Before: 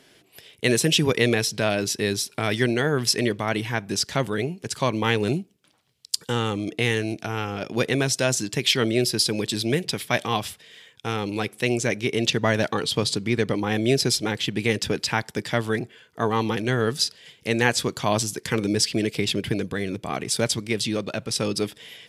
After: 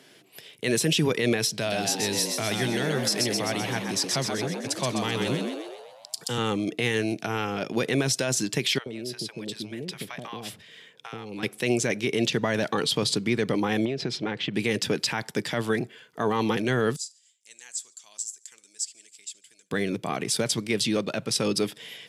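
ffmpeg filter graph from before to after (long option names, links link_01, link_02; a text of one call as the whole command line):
ffmpeg -i in.wav -filter_complex "[0:a]asettb=1/sr,asplit=3[link_01][link_02][link_03];[link_01]atrim=end=1.514[link_04];[link_02]atrim=start=1.51:end=6.38,asetpts=PTS-STARTPTS,afade=type=in:duration=0.004:curve=qsin,afade=type=out:start_time=4.866:duration=0.004:curve=qsin,equalizer=frequency=650:width_type=o:width=0.29:gain=4.5,acrossover=split=130|3000[link_05][link_06][link_07];[link_06]acompressor=threshold=-41dB:ratio=1.5:attack=3.2:release=140:knee=2.83:detection=peak[link_08];[link_05][link_08][link_07]amix=inputs=3:normalize=0,asplit=9[link_09][link_10][link_11][link_12][link_13][link_14][link_15][link_16][link_17];[link_10]adelay=128,afreqshift=79,volume=-5dB[link_18];[link_11]adelay=256,afreqshift=158,volume=-9.9dB[link_19];[link_12]adelay=384,afreqshift=237,volume=-14.8dB[link_20];[link_13]adelay=512,afreqshift=316,volume=-19.6dB[link_21];[link_14]adelay=640,afreqshift=395,volume=-24.5dB[link_22];[link_15]adelay=768,afreqshift=474,volume=-29.4dB[link_23];[link_16]adelay=896,afreqshift=553,volume=-34.3dB[link_24];[link_17]adelay=1024,afreqshift=632,volume=-39.2dB[link_25];[link_09][link_18][link_19][link_20][link_21][link_22][link_23][link_24][link_25]amix=inputs=9:normalize=0,atrim=end_sample=214767[link_26];[link_03]atrim=start=6.376[link_27];[link_04][link_26]acrossfade=duration=0.004:curve1=hsin:curve2=qsin[link_28];[link_28][link_27]acrossfade=duration=0.004:curve1=qsin:curve2=hsin,asettb=1/sr,asplit=3[link_29][link_30][link_31];[link_29]atrim=end=8.784[link_32];[link_30]atrim=start=8.78:end=11.43,asetpts=PTS-STARTPTS,afade=type=in:duration=0.004:curve=qsin,afade=type=out:start_time=2.646:duration=0.004:curve=qsin,highshelf=frequency=4200:gain=-7,acompressor=threshold=-31dB:ratio=8:attack=3.2:release=140:knee=1:detection=peak,acrossover=split=690[link_33][link_34];[link_33]adelay=80[link_35];[link_35][link_34]amix=inputs=2:normalize=0,atrim=end_sample=116865[link_36];[link_31]atrim=start=11.426[link_37];[link_32][link_36]acrossfade=duration=0.004:curve1=hsin:curve2=qsin[link_38];[link_38][link_37]acrossfade=duration=0.004:curve1=qsin:curve2=hsin,asettb=1/sr,asplit=3[link_39][link_40][link_41];[link_39]atrim=end=13.854[link_42];[link_40]atrim=start=13.85:end=14.54,asetpts=PTS-STARTPTS,afade=type=in:duration=0.004:curve=qsin,afade=type=out:start_time=0.686:duration=0.004:curve=qsin,lowpass=2900,acompressor=threshold=-24dB:ratio=12:attack=3.2:release=140:knee=1:detection=peak[link_43];[link_41]atrim=start=14.536[link_44];[link_42][link_43]acrossfade=duration=0.004:curve1=hsin:curve2=qsin[link_45];[link_45][link_44]acrossfade=duration=0.004:curve1=qsin:curve2=hsin,asettb=1/sr,asplit=3[link_46][link_47][link_48];[link_46]atrim=end=16.964[link_49];[link_47]atrim=start=16.96:end=19.71,asetpts=PTS-STARTPTS,afade=type=in:duration=0.004:curve=qsin,afade=type=out:start_time=2.746:duration=0.004:curve=qsin,bandpass=frequency=7500:width_type=q:width=6.5,aecho=1:1:72|144|216:0.0668|0.0341|0.0174,atrim=end_sample=121275[link_50];[link_48]atrim=start=19.706[link_51];[link_49][link_50]acrossfade=duration=0.004:curve1=hsin:curve2=qsin[link_52];[link_52][link_51]acrossfade=duration=0.004:curve1=qsin:curve2=hsin,highpass=frequency=120:width=0.5412,highpass=frequency=120:width=1.3066,alimiter=limit=-15dB:level=0:latency=1:release=39,volume=1dB" out.wav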